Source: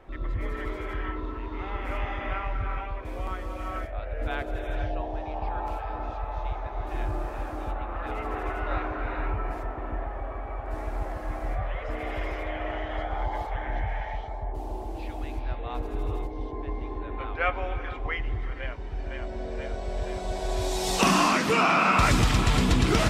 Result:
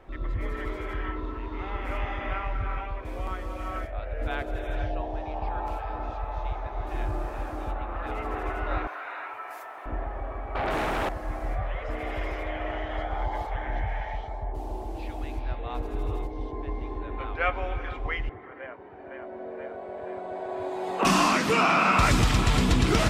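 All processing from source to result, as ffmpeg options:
-filter_complex "[0:a]asettb=1/sr,asplit=3[s0][s1][s2];[s0]atrim=end=8.874[s3];[s1]atrim=start=8.87:end=9.86,asetpts=PTS-STARTPTS,afade=t=in:d=0.004:c=qsin,afade=t=out:st=0.986:d=0.004:c=qsin,highpass=840,acrossover=split=2600[s4][s5];[s5]acompressor=threshold=0.00112:ratio=4:attack=1:release=60[s6];[s4][s6]amix=inputs=2:normalize=0,aemphasis=mode=production:type=75fm[s7];[s2]atrim=start=9.856[s8];[s3][s7]acrossfade=d=0.004:c1=hsin:c2=qsin[s9];[s9][s8]acrossfade=d=0.004:c1=qsin:c2=hsin,asettb=1/sr,asplit=3[s10][s11][s12];[s10]atrim=end=10.554[s13];[s11]atrim=start=10.55:end=11.09,asetpts=PTS-STARTPTS,afade=t=in:d=0.004:c=qsin,afade=t=out:st=0.536:d=0.004:c=qsin,highpass=f=160:p=1,aeval=exprs='0.0631*sin(PI/2*3.55*val(0)/0.0631)':c=same[s14];[s12]atrim=start=11.086[s15];[s13][s14]acrossfade=d=0.004:c1=hsin:c2=qsin[s16];[s16][s15]acrossfade=d=0.004:c1=qsin:c2=hsin,asettb=1/sr,asplit=3[s17][s18][s19];[s17]atrim=end=18.294[s20];[s18]atrim=start=18.29:end=21.05,asetpts=PTS-STARTPTS,afade=t=in:d=0.004:c=qsin,afade=t=out:st=2.756:d=0.004:c=qsin,highpass=f=88:w=0.5412,highpass=f=88:w=1.3066,acrossover=split=250 2000:gain=0.2 1 0.0631[s21][s22][s23];[s21][s22][s23]amix=inputs=3:normalize=0,bandreject=f=5600:w=5.1[s24];[s19]atrim=start=21.046[s25];[s20][s24]acrossfade=d=0.004:c1=hsin:c2=qsin[s26];[s26][s25]acrossfade=d=0.004:c1=qsin:c2=hsin"

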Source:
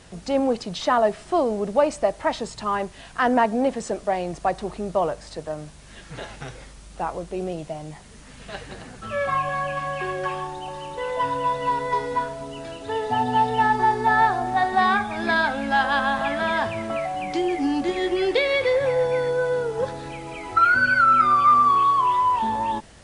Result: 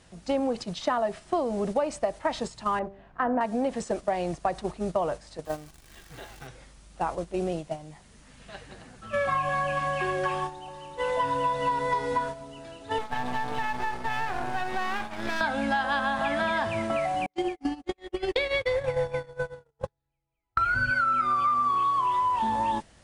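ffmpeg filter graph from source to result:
-filter_complex "[0:a]asettb=1/sr,asplit=3[s0][s1][s2];[s0]atrim=end=2.794[s3];[s1]atrim=start=2.79:end=3.41,asetpts=PTS-STARTPTS,afade=t=in:d=0.004:c=qsin,afade=t=out:st=0.616:d=0.004:c=qsin,lowpass=1300,bandreject=f=65.53:t=h:w=4,bandreject=f=131.06:t=h:w=4,bandreject=f=196.59:t=h:w=4,bandreject=f=262.12:t=h:w=4,bandreject=f=327.65:t=h:w=4,bandreject=f=393.18:t=h:w=4,bandreject=f=458.71:t=h:w=4,bandreject=f=524.24:t=h:w=4,bandreject=f=589.77:t=h:w=4,bandreject=f=655.3:t=h:w=4,bandreject=f=720.83:t=h:w=4,bandreject=f=786.36:t=h:w=4,bandreject=f=851.89:t=h:w=4,bandreject=f=917.42:t=h:w=4,bandreject=f=982.95:t=h:w=4,bandreject=f=1048.48:t=h:w=4,bandreject=f=1114.01:t=h:w=4,bandreject=f=1179.54:t=h:w=4,bandreject=f=1245.07:t=h:w=4,bandreject=f=1310.6:t=h:w=4,bandreject=f=1376.13:t=h:w=4,bandreject=f=1441.66:t=h:w=4,bandreject=f=1507.19:t=h:w=4,bandreject=f=1572.72:t=h:w=4,bandreject=f=1638.25:t=h:w=4,bandreject=f=1703.78:t=h:w=4[s4];[s2]atrim=start=3.406[s5];[s3][s4]acrossfade=d=0.004:c1=hsin:c2=qsin[s6];[s6][s5]acrossfade=d=0.004:c1=qsin:c2=hsin,asettb=1/sr,asplit=3[s7][s8][s9];[s7]atrim=end=5.454[s10];[s8]atrim=start=5.45:end=6.47,asetpts=PTS-STARTPTS,afade=t=in:d=0.004:c=qsin,afade=t=out:st=1.016:d=0.004:c=qsin,acrusher=bits=8:dc=4:mix=0:aa=0.000001,aecho=1:1:2.6:0.33,atrim=end_sample=44982[s11];[s9]atrim=start=6.466[s12];[s10][s11]acrossfade=d=0.004:c1=hsin:c2=qsin[s13];[s13][s12]acrossfade=d=0.004:c1=qsin:c2=hsin,asettb=1/sr,asplit=3[s14][s15][s16];[s14]atrim=end=12.984[s17];[s15]atrim=start=12.98:end=15.41,asetpts=PTS-STARTPTS,afade=t=in:d=0.004:c=qsin,afade=t=out:st=2.426:d=0.004:c=qsin,highpass=49,acompressor=threshold=0.0708:ratio=3:attack=3.2:release=140:knee=1:detection=peak,aeval=exprs='max(val(0),0)':c=same[s18];[s16]atrim=start=15.406[s19];[s17][s18]acrossfade=d=0.004:c1=hsin:c2=qsin[s20];[s20][s19]acrossfade=d=0.004:c1=qsin:c2=hsin,asettb=1/sr,asplit=3[s21][s22][s23];[s21]atrim=end=17.264[s24];[s22]atrim=start=17.26:end=20.91,asetpts=PTS-STARTPTS,afade=t=in:d=0.004:c=qsin,afade=t=out:st=3.646:d=0.004:c=qsin,asubboost=boost=8:cutoff=120,agate=range=0.00631:threshold=0.0708:ratio=16:release=100:detection=peak[s25];[s23]atrim=start=20.906[s26];[s24][s25]acrossfade=d=0.004:c1=hsin:c2=qsin[s27];[s27][s26]acrossfade=d=0.004:c1=qsin:c2=hsin,bandreject=f=430:w=12,agate=range=0.355:threshold=0.0316:ratio=16:detection=peak,acompressor=threshold=0.0631:ratio=6,volume=1.12"

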